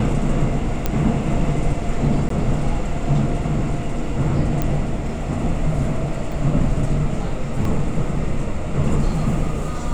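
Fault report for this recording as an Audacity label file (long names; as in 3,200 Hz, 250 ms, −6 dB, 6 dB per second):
0.860000	0.860000	click −6 dBFS
2.290000	2.300000	drop-out 13 ms
4.620000	4.620000	click −8 dBFS
6.320000	6.320000	drop-out 2.8 ms
7.650000	7.650000	drop-out 2.7 ms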